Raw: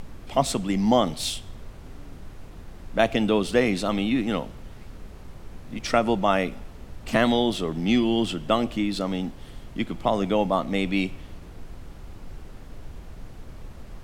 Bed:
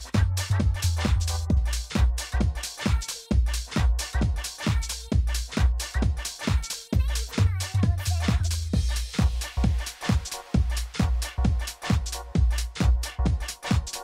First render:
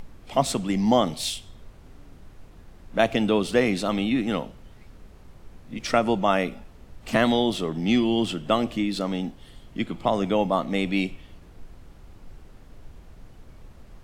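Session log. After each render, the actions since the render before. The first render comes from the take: noise print and reduce 6 dB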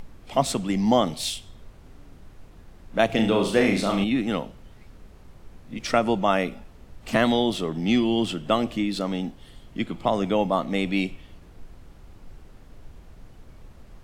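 3.06–4.04 s: flutter echo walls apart 6.1 m, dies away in 0.44 s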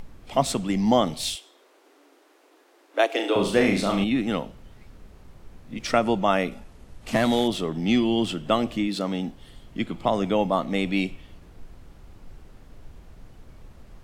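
1.35–3.36 s: steep high-pass 290 Hz 72 dB/octave; 6.51–7.48 s: CVSD coder 64 kbps; 8.87–9.27 s: high-pass 120 Hz -> 43 Hz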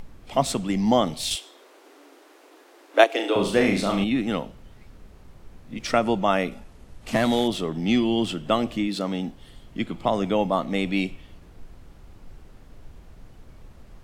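1.31–3.04 s: gain +6 dB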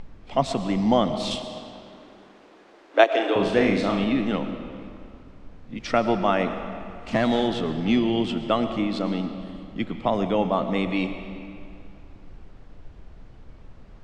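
distance through air 110 m; algorithmic reverb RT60 2.5 s, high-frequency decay 0.75×, pre-delay 70 ms, DRR 8.5 dB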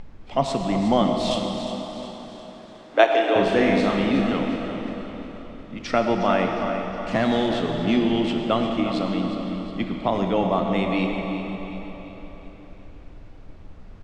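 feedback delay 360 ms, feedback 48%, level -11 dB; plate-style reverb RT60 4.1 s, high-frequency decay 0.85×, DRR 4.5 dB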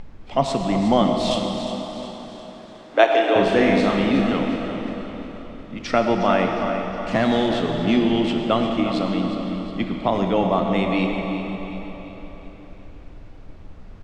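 trim +2 dB; peak limiter -2 dBFS, peak gain reduction 1.5 dB

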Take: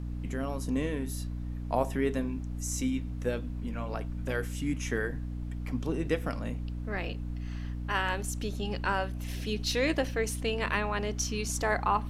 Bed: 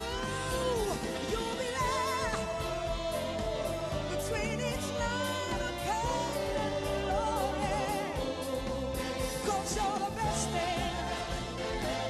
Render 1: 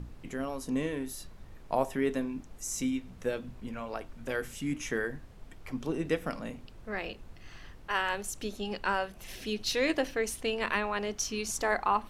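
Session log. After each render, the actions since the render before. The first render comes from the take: hum notches 60/120/180/240/300 Hz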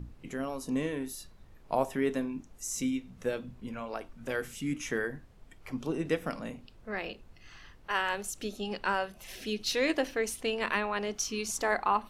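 noise print and reduce 6 dB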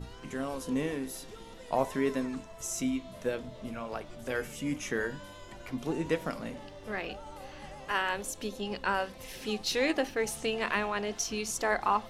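add bed -15 dB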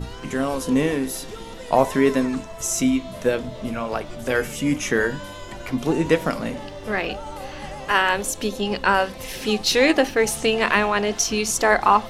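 trim +11.5 dB; peak limiter -3 dBFS, peak gain reduction 1 dB

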